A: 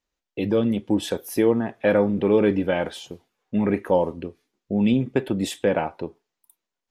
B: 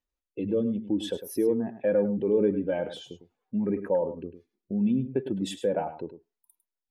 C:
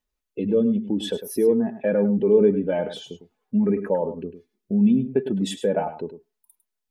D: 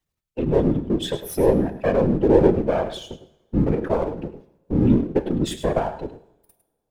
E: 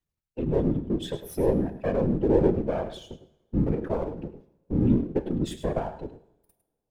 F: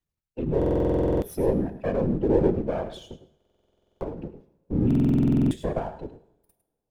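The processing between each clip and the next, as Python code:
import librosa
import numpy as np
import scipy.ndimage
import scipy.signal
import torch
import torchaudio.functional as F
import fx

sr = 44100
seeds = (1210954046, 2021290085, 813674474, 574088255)

y1 = fx.spec_expand(x, sr, power=1.6)
y1 = y1 + 10.0 ** (-11.5 / 20.0) * np.pad(y1, (int(103 * sr / 1000.0), 0))[:len(y1)]
y1 = y1 * 10.0 ** (-5.5 / 20.0)
y2 = y1 + 0.43 * np.pad(y1, (int(4.7 * sr / 1000.0), 0))[:len(y1)]
y2 = y2 * 10.0 ** (4.5 / 20.0)
y3 = np.where(y2 < 0.0, 10.0 ** (-7.0 / 20.0) * y2, y2)
y3 = fx.whisperise(y3, sr, seeds[0])
y3 = fx.rev_double_slope(y3, sr, seeds[1], early_s=0.76, late_s=2.3, knee_db=-25, drr_db=12.5)
y3 = y3 * 10.0 ** (3.5 / 20.0)
y4 = fx.low_shelf(y3, sr, hz=440.0, db=5.5)
y4 = y4 * 10.0 ** (-9.0 / 20.0)
y5 = fx.buffer_glitch(y4, sr, at_s=(0.57, 3.36, 4.86), block=2048, repeats=13)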